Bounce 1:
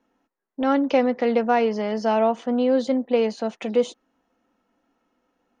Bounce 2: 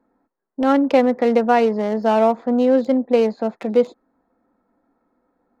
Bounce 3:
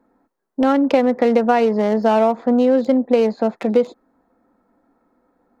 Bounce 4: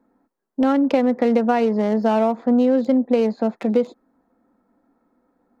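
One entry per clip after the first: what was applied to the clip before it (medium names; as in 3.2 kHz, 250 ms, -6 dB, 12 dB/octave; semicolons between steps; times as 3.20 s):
local Wiener filter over 15 samples; trim +4.5 dB
compression 4:1, threshold -16 dBFS, peak gain reduction 6.5 dB; trim +4.5 dB
peaking EQ 230 Hz +4 dB 0.87 oct; trim -4 dB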